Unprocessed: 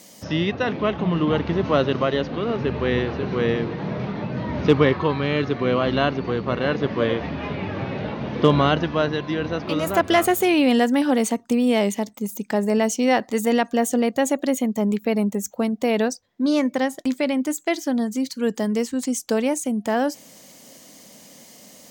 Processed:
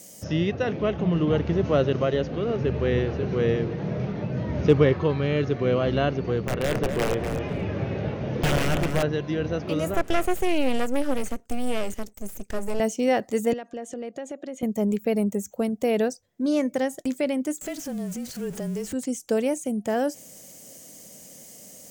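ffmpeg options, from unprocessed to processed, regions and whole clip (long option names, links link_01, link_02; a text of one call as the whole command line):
ffmpeg -i in.wav -filter_complex "[0:a]asettb=1/sr,asplit=3[link_01][link_02][link_03];[link_01]atrim=end=6.434[link_04];[link_02]atrim=start=6.43:end=9.03,asetpts=PTS-STARTPTS,afade=type=in:duration=0.004:curve=qsin,afade=type=out:start_time=2.596:duration=0.004:curve=qsin,aeval=exprs='(mod(4.73*val(0)+1,2)-1)/4.73':channel_layout=same,asplit=2[link_05][link_06];[link_06]adelay=246,lowpass=frequency=2100:poles=1,volume=-6dB,asplit=2[link_07][link_08];[link_08]adelay=246,lowpass=frequency=2100:poles=1,volume=0.33,asplit=2[link_09][link_10];[link_10]adelay=246,lowpass=frequency=2100:poles=1,volume=0.33,asplit=2[link_11][link_12];[link_12]adelay=246,lowpass=frequency=2100:poles=1,volume=0.33[link_13];[link_05][link_07][link_09][link_11][link_13]amix=inputs=5:normalize=0,atrim=end_sample=114660[link_14];[link_03]atrim=start=9.026[link_15];[link_04][link_14]acrossfade=duration=0.004:curve1=hsin:curve2=qsin[link_16];[link_16][link_15]acrossfade=duration=0.004:curve1=qsin:curve2=hsin,asettb=1/sr,asplit=3[link_17][link_18][link_19];[link_17]atrim=end=9.944[link_20];[link_18]atrim=start=9.94:end=12.8,asetpts=PTS-STARTPTS,afade=type=in:duration=0.004:curve=qsin,afade=type=out:start_time=2.856:duration=0.004:curve=qsin,highpass=frequency=180:width=0.5412,highpass=frequency=180:width=1.3066,aeval=exprs='max(val(0),0)':channel_layout=same[link_21];[link_19]atrim=start=12.796[link_22];[link_20][link_21]acrossfade=duration=0.004:curve1=hsin:curve2=qsin[link_23];[link_23][link_22]acrossfade=duration=0.004:curve1=qsin:curve2=hsin,asettb=1/sr,asplit=3[link_24][link_25][link_26];[link_24]atrim=end=13.534[link_27];[link_25]atrim=start=13.53:end=14.63,asetpts=PTS-STARTPTS,afade=type=in:duration=0.004:curve=qsin,afade=type=out:start_time=1.096:duration=0.004:curve=qsin,highpass=220,lowpass=3900,acompressor=threshold=-31dB:ratio=3:attack=3.2:release=140:knee=1:detection=peak[link_28];[link_26]atrim=start=14.626[link_29];[link_27][link_28]acrossfade=duration=0.004:curve1=hsin:curve2=qsin[link_30];[link_30][link_29]acrossfade=duration=0.004:curve1=qsin:curve2=hsin,asettb=1/sr,asplit=3[link_31][link_32][link_33];[link_31]atrim=end=17.614[link_34];[link_32]atrim=start=17.61:end=18.93,asetpts=PTS-STARTPTS,afade=type=in:duration=0.004:curve=qsin,afade=type=out:start_time=1.316:duration=0.004:curve=qsin,aeval=exprs='val(0)+0.5*0.0355*sgn(val(0))':channel_layout=same,acompressor=threshold=-29dB:ratio=2.5:attack=3.2:release=140:knee=1:detection=peak,afreqshift=-27[link_35];[link_33]atrim=start=18.926[link_36];[link_34][link_35]acrossfade=duration=0.004:curve1=hsin:curve2=qsin[link_37];[link_37][link_36]acrossfade=duration=0.004:curve1=qsin:curve2=hsin,acrossover=split=4200[link_38][link_39];[link_39]acompressor=threshold=-40dB:ratio=4:attack=1:release=60[link_40];[link_38][link_40]amix=inputs=2:normalize=0,equalizer=frequency=250:width_type=o:width=1:gain=-7,equalizer=frequency=1000:width_type=o:width=1:gain=-11,equalizer=frequency=2000:width_type=o:width=1:gain=-5,equalizer=frequency=4000:width_type=o:width=1:gain=-10,equalizer=frequency=8000:width_type=o:width=1:gain=3,volume=3dB" out.wav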